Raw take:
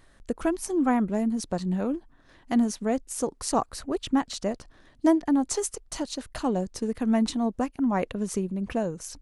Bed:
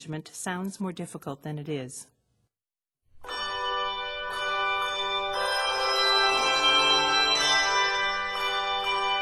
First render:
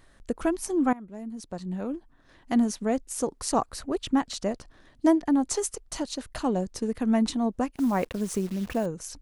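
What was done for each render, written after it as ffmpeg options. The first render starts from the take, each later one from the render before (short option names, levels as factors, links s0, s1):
-filter_complex "[0:a]asettb=1/sr,asplit=3[s0][s1][s2];[s0]atrim=end=7.754[s3];[s1]atrim=start=7.75:end=8.86,asetpts=PTS-STARTPTS,afade=t=in:d=0.004:c=qsin,afade=t=out:st=1.106:d=0.004:c=qsin,acrusher=bits=8:dc=4:mix=0:aa=0.000001[s4];[s2]atrim=start=8.856[s5];[s3][s4]acrossfade=d=0.004:c1=hsin:c2=qsin[s6];[s6][s5]acrossfade=d=0.004:c1=qsin:c2=hsin,asplit=2[s7][s8];[s7]atrim=end=0.93,asetpts=PTS-STARTPTS,afade=t=out:st=0.926:d=0.004:c=hsin:silence=0.0841395[s9];[s8]atrim=start=0.93,asetpts=PTS-STARTPTS,afade=t=in:d=1.61:silence=0.0841395[s10];[s9][s10]concat=n=2:v=0:a=1"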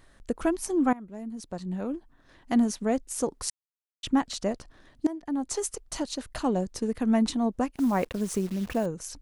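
-filter_complex "[0:a]asplit=4[s0][s1][s2][s3];[s0]atrim=end=3.5,asetpts=PTS-STARTPTS,afade=t=out:st=3.496:d=0.004:c=hsin[s4];[s1]atrim=start=3.5:end=4.03,asetpts=PTS-STARTPTS,volume=0[s5];[s2]atrim=start=4.03:end=5.07,asetpts=PTS-STARTPTS,afade=t=in:d=0.004:c=hsin,afade=t=out:st=1.036:d=0.004:c=hsin:silence=0.0944061[s6];[s3]atrim=start=5.07,asetpts=PTS-STARTPTS,afade=t=in:d=0.69:silence=0.0944061[s7];[s4][s5][s6][s7]concat=n=4:v=0:a=1"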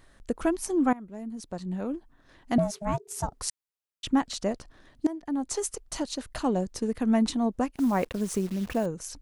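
-filter_complex "[0:a]asettb=1/sr,asplit=3[s0][s1][s2];[s0]atrim=end=2.584[s3];[s1]atrim=start=2.58:end=3.33,asetpts=PTS-STARTPTS,afade=t=in:d=0.004:c=qsin,afade=t=out:st=0.746:d=0.004:c=qsin,aeval=exprs='val(0)*sin(2*PI*410*n/s)':c=same[s4];[s2]atrim=start=3.326[s5];[s3][s4]acrossfade=d=0.004:c1=hsin:c2=qsin[s6];[s6][s5]acrossfade=d=0.004:c1=qsin:c2=hsin"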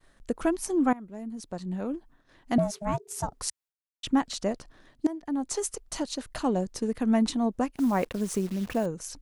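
-af "agate=range=0.0224:threshold=0.00224:ratio=3:detection=peak,equalizer=f=60:t=o:w=0.86:g=-6"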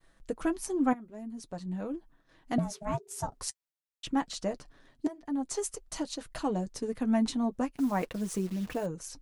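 -af "flanger=delay=6:depth=1.8:regen=-36:speed=0.48:shape=sinusoidal"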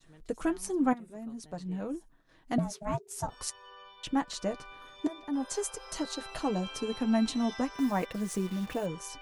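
-filter_complex "[1:a]volume=0.075[s0];[0:a][s0]amix=inputs=2:normalize=0"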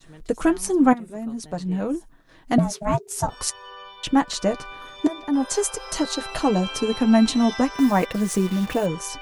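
-af "volume=3.35"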